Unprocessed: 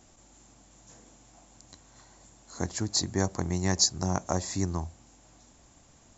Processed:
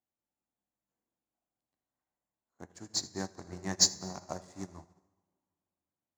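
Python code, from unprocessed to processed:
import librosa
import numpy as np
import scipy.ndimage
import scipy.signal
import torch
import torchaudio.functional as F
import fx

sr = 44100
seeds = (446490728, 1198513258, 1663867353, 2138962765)

p1 = fx.wiener(x, sr, points=9)
p2 = 10.0 ** (-21.5 / 20.0) * np.tanh(p1 / 10.0 ** (-21.5 / 20.0))
p3 = p1 + (p2 * 10.0 ** (-3.5 / 20.0))
p4 = fx.highpass(p3, sr, hz=190.0, slope=6)
p5 = p4 + fx.echo_single(p4, sr, ms=80, db=-13.5, dry=0)
p6 = fx.rev_plate(p5, sr, seeds[0], rt60_s=2.6, hf_ratio=0.7, predelay_ms=0, drr_db=4.0)
p7 = fx.upward_expand(p6, sr, threshold_db=-42.0, expansion=2.5)
y = p7 * 10.0 ** (-2.0 / 20.0)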